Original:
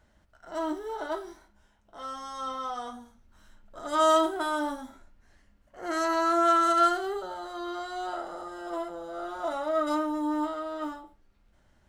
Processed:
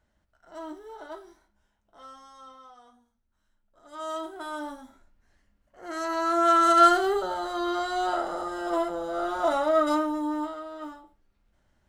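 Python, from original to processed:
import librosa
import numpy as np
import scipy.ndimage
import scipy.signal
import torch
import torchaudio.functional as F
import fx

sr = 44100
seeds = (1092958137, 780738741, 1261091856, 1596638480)

y = fx.gain(x, sr, db=fx.line((2.03, -8.0), (2.77, -17.5), (3.8, -17.5), (4.55, -5.5), (5.86, -5.5), (6.96, 7.0), (9.56, 7.0), (10.7, -4.5)))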